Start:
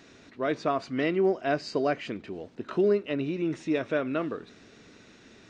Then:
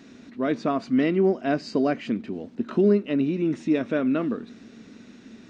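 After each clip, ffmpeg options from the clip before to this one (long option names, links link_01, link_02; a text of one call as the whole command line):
ffmpeg -i in.wav -af "equalizer=frequency=230:width_type=o:width=0.67:gain=14.5" out.wav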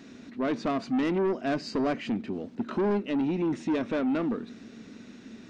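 ffmpeg -i in.wav -af "asoftclip=type=tanh:threshold=-22.5dB" out.wav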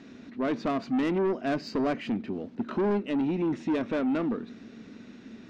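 ffmpeg -i in.wav -af "adynamicsmooth=sensitivity=4.5:basefreq=6100" out.wav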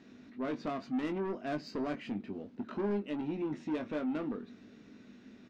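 ffmpeg -i in.wav -filter_complex "[0:a]asplit=2[link_01][link_02];[link_02]adelay=20,volume=-7dB[link_03];[link_01][link_03]amix=inputs=2:normalize=0,volume=-8.5dB" out.wav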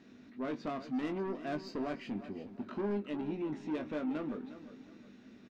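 ffmpeg -i in.wav -af "aecho=1:1:359|718|1077:0.211|0.0761|0.0274,volume=-1.5dB" out.wav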